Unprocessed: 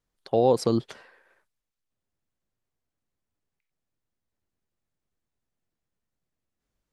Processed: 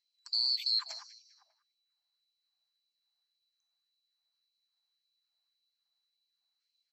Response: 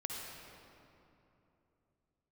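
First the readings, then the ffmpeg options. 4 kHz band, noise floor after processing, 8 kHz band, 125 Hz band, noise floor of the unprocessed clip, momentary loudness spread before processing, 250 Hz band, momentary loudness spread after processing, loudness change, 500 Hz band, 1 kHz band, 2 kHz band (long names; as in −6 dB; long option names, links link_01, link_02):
+13.0 dB, −85 dBFS, −9.0 dB, below −40 dB, −85 dBFS, 7 LU, below −40 dB, 16 LU, −5.5 dB, below −40 dB, −25.0 dB, −3.0 dB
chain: -filter_complex "[0:a]afftfilt=real='real(if(lt(b,736),b+184*(1-2*mod(floor(b/184),2)),b),0)':imag='imag(if(lt(b,736),b+184*(1-2*mod(floor(b/184),2)),b),0)':win_size=2048:overlap=0.75,acrossover=split=780[link_01][link_02];[link_01]acontrast=82[link_03];[link_02]alimiter=limit=-20dB:level=0:latency=1:release=52[link_04];[link_03][link_04]amix=inputs=2:normalize=0,aeval=exprs='val(0)+0.000355*(sin(2*PI*60*n/s)+sin(2*PI*2*60*n/s)/2+sin(2*PI*3*60*n/s)/3+sin(2*PI*4*60*n/s)/4+sin(2*PI*5*60*n/s)/5)':channel_layout=same,asoftclip=type=hard:threshold=-19dB,highpass=440,lowpass=5700,asplit=2[link_05][link_06];[link_06]adelay=198,lowpass=frequency=2500:poles=1,volume=-10dB,asplit=2[link_07][link_08];[link_08]adelay=198,lowpass=frequency=2500:poles=1,volume=0.45,asplit=2[link_09][link_10];[link_10]adelay=198,lowpass=frequency=2500:poles=1,volume=0.45,asplit=2[link_11][link_12];[link_12]adelay=198,lowpass=frequency=2500:poles=1,volume=0.45,asplit=2[link_13][link_14];[link_14]adelay=198,lowpass=frequency=2500:poles=1,volume=0.45[link_15];[link_07][link_09][link_11][link_13][link_15]amix=inputs=5:normalize=0[link_16];[link_05][link_16]amix=inputs=2:normalize=0,afftfilt=real='re*gte(b*sr/1024,580*pow(2300/580,0.5+0.5*sin(2*PI*1.8*pts/sr)))':imag='im*gte(b*sr/1024,580*pow(2300/580,0.5+0.5*sin(2*PI*1.8*pts/sr)))':win_size=1024:overlap=0.75"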